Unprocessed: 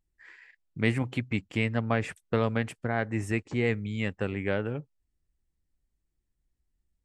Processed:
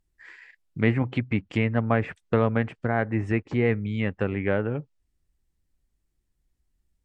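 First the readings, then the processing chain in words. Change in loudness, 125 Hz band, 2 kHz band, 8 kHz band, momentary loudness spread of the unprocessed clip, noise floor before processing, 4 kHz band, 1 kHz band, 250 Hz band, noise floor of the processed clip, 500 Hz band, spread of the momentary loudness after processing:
+4.0 dB, +4.5 dB, +2.0 dB, below −10 dB, 5 LU, −80 dBFS, −2.0 dB, +4.0 dB, +4.5 dB, −75 dBFS, +4.5 dB, 4 LU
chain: treble cut that deepens with the level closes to 2,000 Hz, closed at −26 dBFS
level +4.5 dB

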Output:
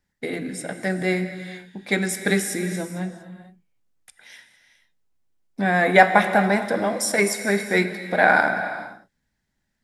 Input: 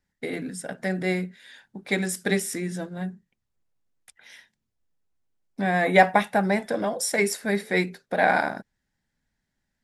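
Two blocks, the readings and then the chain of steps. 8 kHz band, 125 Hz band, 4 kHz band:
+3.0 dB, +2.5 dB, +3.0 dB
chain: dynamic equaliser 1,400 Hz, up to +6 dB, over −40 dBFS, Q 3.5
reverb whose tail is shaped and stops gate 480 ms flat, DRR 8.5 dB
level +2.5 dB

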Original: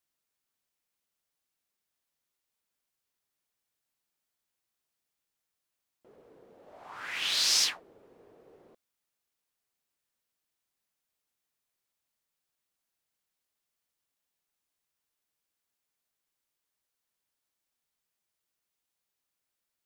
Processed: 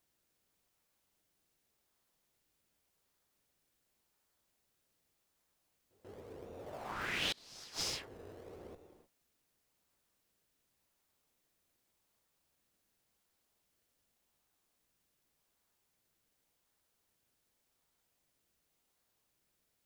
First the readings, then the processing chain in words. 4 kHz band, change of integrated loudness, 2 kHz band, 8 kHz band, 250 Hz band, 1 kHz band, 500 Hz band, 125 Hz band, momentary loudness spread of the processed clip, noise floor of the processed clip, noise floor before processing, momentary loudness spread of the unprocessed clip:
−11.5 dB, −13.5 dB, −4.5 dB, −14.0 dB, +6.5 dB, −1.0 dB, +4.5 dB, can't be measured, 19 LU, −81 dBFS, below −85 dBFS, 15 LU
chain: sub-octave generator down 2 octaves, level −3 dB
reverb whose tail is shaped and stops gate 330 ms rising, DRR 9.5 dB
gate with flip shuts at −18 dBFS, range −32 dB
in parallel at −9 dB: sample-and-hold swept by an LFO 27×, swing 100% 0.88 Hz
on the sum: downward compressor 2 to 1, threshold −44 dBFS, peak gain reduction 9.5 dB
echo ahead of the sound 138 ms −22 dB
level +4 dB

